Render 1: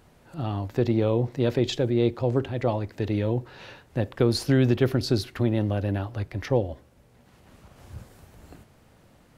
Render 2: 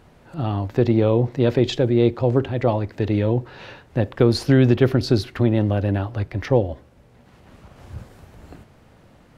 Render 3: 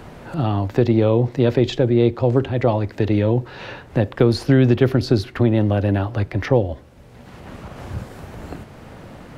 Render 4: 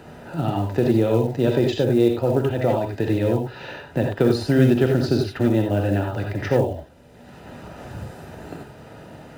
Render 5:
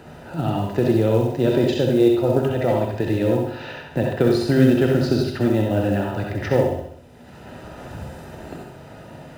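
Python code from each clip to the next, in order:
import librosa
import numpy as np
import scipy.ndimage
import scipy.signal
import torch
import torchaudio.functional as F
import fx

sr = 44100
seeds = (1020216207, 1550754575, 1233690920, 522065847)

y1 = fx.high_shelf(x, sr, hz=6000.0, db=-9.5)
y1 = y1 * librosa.db_to_amplitude(5.5)
y2 = fx.band_squash(y1, sr, depth_pct=40)
y2 = y2 * librosa.db_to_amplitude(1.5)
y3 = fx.notch_comb(y2, sr, f0_hz=1100.0)
y3 = fx.rev_gated(y3, sr, seeds[0], gate_ms=110, shape='rising', drr_db=1.5)
y3 = fx.quant_float(y3, sr, bits=4)
y3 = y3 * librosa.db_to_amplitude(-3.0)
y4 = fx.echo_feedback(y3, sr, ms=65, feedback_pct=52, wet_db=-6.0)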